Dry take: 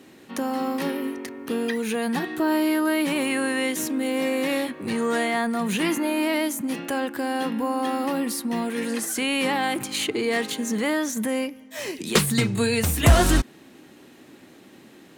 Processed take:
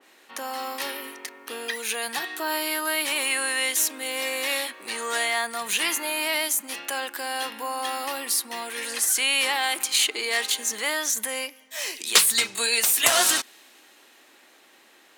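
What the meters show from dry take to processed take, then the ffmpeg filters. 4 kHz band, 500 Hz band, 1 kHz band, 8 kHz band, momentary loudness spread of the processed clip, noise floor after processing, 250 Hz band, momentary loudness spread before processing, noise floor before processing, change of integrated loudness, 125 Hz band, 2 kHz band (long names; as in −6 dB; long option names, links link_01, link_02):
+6.0 dB, −7.0 dB, −1.5 dB, +7.5 dB, 13 LU, −56 dBFS, −17.0 dB, 7 LU, −50 dBFS, +0.5 dB, below −30 dB, +2.5 dB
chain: -af "highpass=740,adynamicequalizer=threshold=0.00794:dfrequency=2500:dqfactor=0.7:tfrequency=2500:tqfactor=0.7:attack=5:release=100:ratio=0.375:range=4:mode=boostabove:tftype=highshelf"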